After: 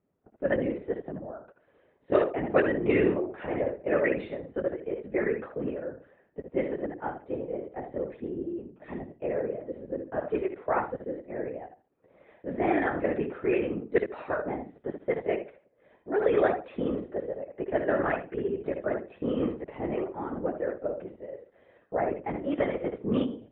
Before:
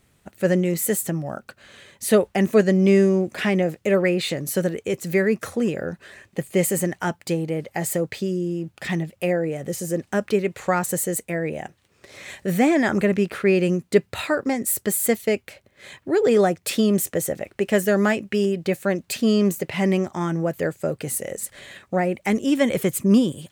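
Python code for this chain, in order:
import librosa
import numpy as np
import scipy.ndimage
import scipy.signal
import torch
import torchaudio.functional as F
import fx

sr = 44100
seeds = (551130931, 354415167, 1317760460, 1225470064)

y = fx.echo_feedback(x, sr, ms=72, feedback_pct=25, wet_db=-7.0)
y = fx.lpc_vocoder(y, sr, seeds[0], excitation='whisper', order=16)
y = fx.highpass(y, sr, hz=300.0, slope=6)
y = fx.env_lowpass(y, sr, base_hz=450.0, full_db=-6.5)
y = fx.low_shelf(y, sr, hz=430.0, db=-10.0)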